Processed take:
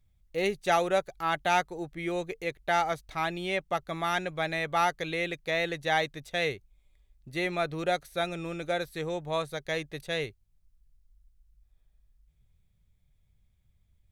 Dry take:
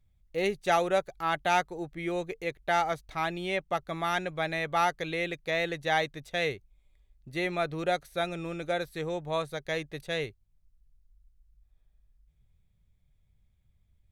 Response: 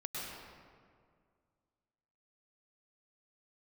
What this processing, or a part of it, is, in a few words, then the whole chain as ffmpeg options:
exciter from parts: -filter_complex "[0:a]asplit=2[link_01][link_02];[link_02]highpass=frequency=3400:poles=1,asoftclip=type=tanh:threshold=-34dB,volume=-8dB[link_03];[link_01][link_03]amix=inputs=2:normalize=0"

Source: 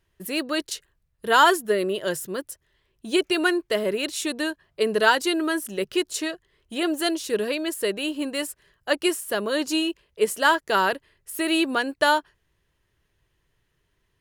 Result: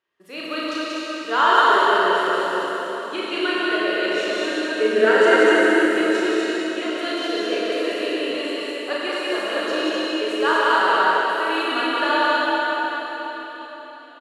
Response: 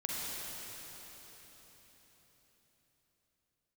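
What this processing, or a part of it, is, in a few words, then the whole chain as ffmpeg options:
station announcement: -filter_complex "[0:a]asettb=1/sr,asplit=3[link_01][link_02][link_03];[link_01]atrim=end=4.474[link_04];[link_02]atrim=start=4.47:end=5.65,asetpts=PTS-STARTPTS,afade=type=in:duration=0.004:curve=qsin,afade=type=out:start_time=1.176:duration=0.004:curve=qsin,equalizer=frequency=250:width_type=o:width=1:gain=9,equalizer=frequency=500:width_type=o:width=1:gain=9,equalizer=frequency=1000:width_type=o:width=1:gain=-9,equalizer=frequency=2000:width_type=o:width=1:gain=9,equalizer=frequency=4000:width_type=o:width=1:gain=-11,equalizer=frequency=8000:width_type=o:width=1:gain=11[link_05];[link_03]atrim=start=5.646[link_06];[link_04][link_05]acrossfade=duration=0.004:curve1=hsin:curve2=qsin[link_07];[link_07][link_06]acrossfade=duration=0.004:curve1=qsin:curve2=hsin,highpass=380,lowpass=4400,equalizer=frequency=1200:width_type=o:width=0.29:gain=6.5,aecho=1:1:34.99|183.7|247.8:0.708|0.794|0.631[link_08];[1:a]atrim=start_sample=2205[link_09];[link_08][link_09]afir=irnorm=-1:irlink=0,volume=-4.5dB"

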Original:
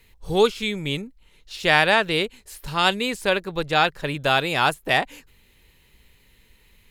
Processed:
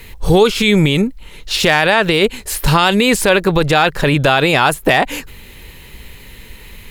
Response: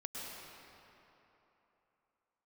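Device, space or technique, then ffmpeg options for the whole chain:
mastering chain: -filter_complex "[0:a]equalizer=frequency=5200:width_type=o:width=2:gain=-2.5,acompressor=threshold=-22dB:ratio=2.5,asoftclip=type=hard:threshold=-13dB,alimiter=level_in=21.5dB:limit=-1dB:release=50:level=0:latency=1,asettb=1/sr,asplit=3[link_01][link_02][link_03];[link_01]atrim=end=4.094[link_04];[link_02]atrim=start=4.09:end=4.66,asetpts=PTS-STARTPTS,afade=type=in:duration=0.004:curve=qsin,afade=type=out:start_time=0.566:duration=0.004:curve=qsin,highshelf=frequency=9800:gain=-6[link_05];[link_03]atrim=start=4.656[link_06];[link_04][link_05]acrossfade=duration=0.004:curve1=hsin:curve2=qsin[link_07];[link_07][link_06]acrossfade=duration=0.004:curve1=qsin:curve2=hsin,volume=-1dB"

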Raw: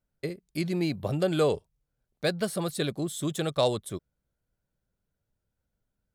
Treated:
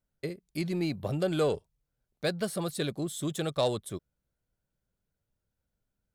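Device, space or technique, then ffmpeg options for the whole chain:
parallel distortion: -filter_complex "[0:a]asplit=2[link_01][link_02];[link_02]asoftclip=type=hard:threshold=-26.5dB,volume=-11.5dB[link_03];[link_01][link_03]amix=inputs=2:normalize=0,volume=-4dB"

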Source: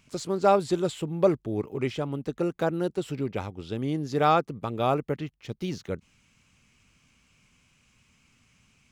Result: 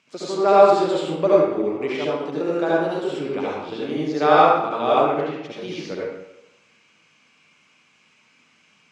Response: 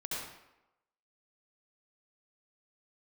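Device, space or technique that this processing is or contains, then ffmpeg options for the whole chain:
supermarket ceiling speaker: -filter_complex "[0:a]highpass=320,lowpass=5500[link_01];[1:a]atrim=start_sample=2205[link_02];[link_01][link_02]afir=irnorm=-1:irlink=0,volume=6dB"

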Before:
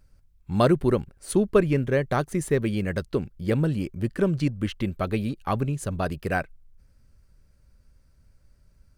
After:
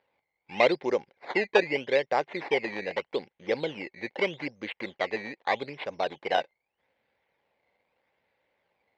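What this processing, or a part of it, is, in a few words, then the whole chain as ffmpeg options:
circuit-bent sampling toy: -af "acrusher=samples=14:mix=1:aa=0.000001:lfo=1:lforange=14:lforate=0.81,highpass=480,equalizer=frequency=500:width_type=q:width=4:gain=6,equalizer=frequency=830:width_type=q:width=4:gain=7,equalizer=frequency=1300:width_type=q:width=4:gain=-8,equalizer=frequency=2100:width_type=q:width=4:gain=9,lowpass=frequency=4100:width=0.5412,lowpass=frequency=4100:width=1.3066,volume=-1.5dB"

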